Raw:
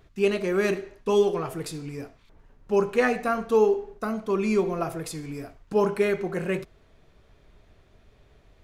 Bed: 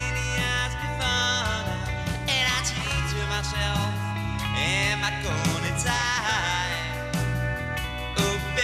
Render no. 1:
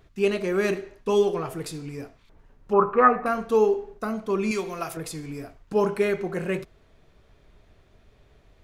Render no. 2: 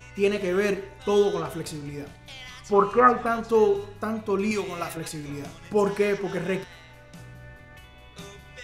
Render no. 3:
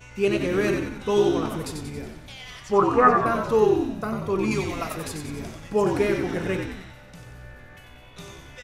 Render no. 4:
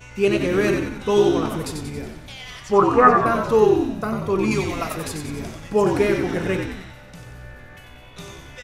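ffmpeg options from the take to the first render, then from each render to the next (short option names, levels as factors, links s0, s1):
-filter_complex "[0:a]asettb=1/sr,asplit=3[s0][s1][s2];[s0]atrim=end=2.734[s3];[s1]atrim=start=2.73:end=3.26,asetpts=PTS-STARTPTS,afade=t=in:d=0.004:c=qsin,afade=t=out:st=0.526:d=0.004:c=qsin,lowpass=f=1200:t=q:w=10[s4];[s2]atrim=start=3.256[s5];[s3][s4]acrossfade=d=0.004:c1=hsin:c2=qsin[s6];[s6][s5]acrossfade=d=0.004:c1=qsin:c2=hsin,asettb=1/sr,asplit=3[s7][s8][s9];[s7]atrim=end=4.514[s10];[s8]atrim=start=4.51:end=4.97,asetpts=PTS-STARTPTS,afade=t=in:d=0.004:c=qsin,afade=t=out:st=0.456:d=0.004:c=qsin,tiltshelf=f=1200:g=-8[s11];[s9]atrim=start=4.966[s12];[s10][s11]acrossfade=d=0.004:c1=hsin:c2=qsin[s13];[s13][s12]acrossfade=d=0.004:c1=qsin:c2=hsin"
-filter_complex "[1:a]volume=0.119[s0];[0:a][s0]amix=inputs=2:normalize=0"
-filter_complex "[0:a]asplit=8[s0][s1][s2][s3][s4][s5][s6][s7];[s1]adelay=92,afreqshift=-63,volume=0.531[s8];[s2]adelay=184,afreqshift=-126,volume=0.282[s9];[s3]adelay=276,afreqshift=-189,volume=0.15[s10];[s4]adelay=368,afreqshift=-252,volume=0.0794[s11];[s5]adelay=460,afreqshift=-315,volume=0.0417[s12];[s6]adelay=552,afreqshift=-378,volume=0.0221[s13];[s7]adelay=644,afreqshift=-441,volume=0.0117[s14];[s0][s8][s9][s10][s11][s12][s13][s14]amix=inputs=8:normalize=0"
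-af "volume=1.5"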